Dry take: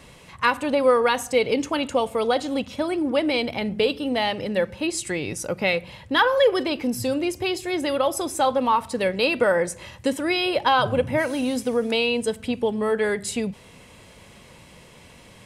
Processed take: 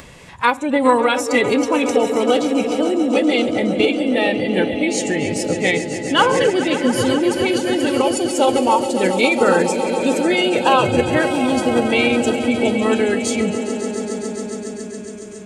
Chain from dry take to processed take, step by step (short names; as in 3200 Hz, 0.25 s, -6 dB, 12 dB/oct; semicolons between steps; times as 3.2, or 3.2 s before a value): swelling echo 0.138 s, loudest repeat 5, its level -12 dB; spectral noise reduction 11 dB; upward compressor, threshold -34 dBFS; formant shift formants -2 st; gain +4.5 dB